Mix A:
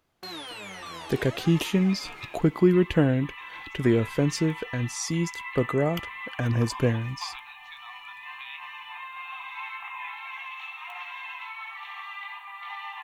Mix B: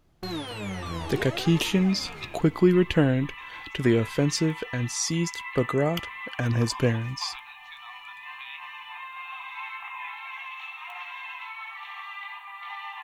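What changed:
speech: add parametric band 4,400 Hz +5 dB 2.4 octaves
first sound: remove high-pass filter 920 Hz 6 dB per octave

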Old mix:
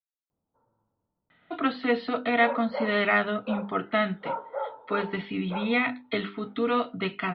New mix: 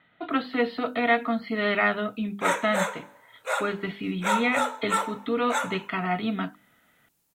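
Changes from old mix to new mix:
speech: entry −1.30 s
background: remove Gaussian smoothing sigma 9.1 samples

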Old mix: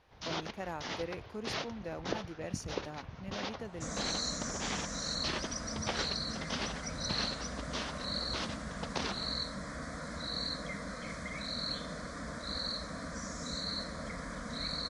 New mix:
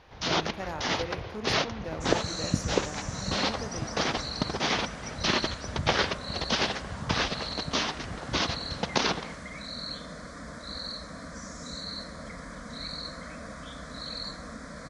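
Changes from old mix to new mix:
speech: send on
first sound +11.0 dB
second sound: entry −1.80 s

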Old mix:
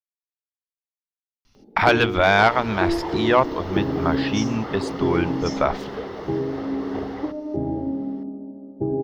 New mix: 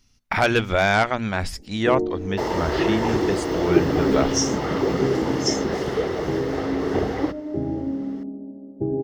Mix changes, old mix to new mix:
speech: entry −1.45 s
second sound +9.5 dB
master: add octave-band graphic EQ 1,000/4,000/8,000 Hz −6/−5/+9 dB

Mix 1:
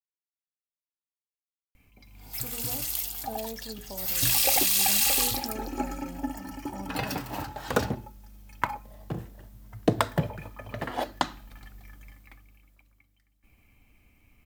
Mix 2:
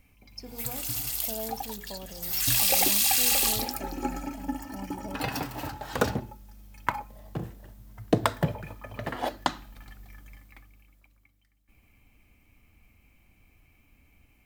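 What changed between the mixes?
speech: entry −2.00 s
background: entry −1.75 s

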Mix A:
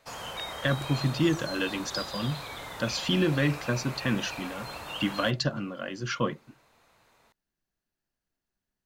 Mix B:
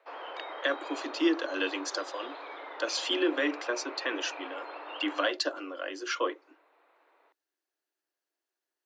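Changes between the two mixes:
background: add Gaussian smoothing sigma 3.1 samples
master: add Butterworth high-pass 290 Hz 96 dB per octave

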